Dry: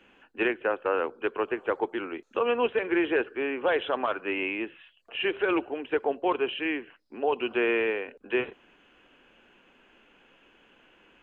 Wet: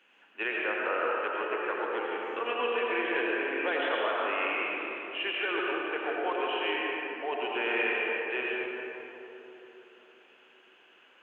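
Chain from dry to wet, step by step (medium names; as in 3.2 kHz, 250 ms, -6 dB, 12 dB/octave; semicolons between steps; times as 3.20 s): high-pass 1.1 kHz 6 dB/octave; algorithmic reverb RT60 3.7 s, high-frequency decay 0.4×, pre-delay 55 ms, DRR -4.5 dB; trim -2.5 dB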